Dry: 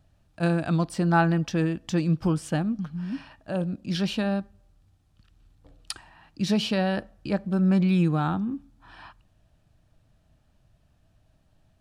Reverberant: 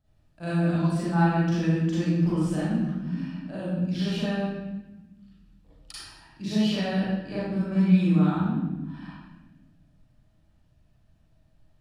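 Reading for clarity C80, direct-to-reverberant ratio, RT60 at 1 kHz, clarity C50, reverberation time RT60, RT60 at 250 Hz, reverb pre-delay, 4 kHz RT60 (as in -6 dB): 0.0 dB, -10.5 dB, 0.95 s, -4.0 dB, 1.1 s, 1.9 s, 37 ms, 0.85 s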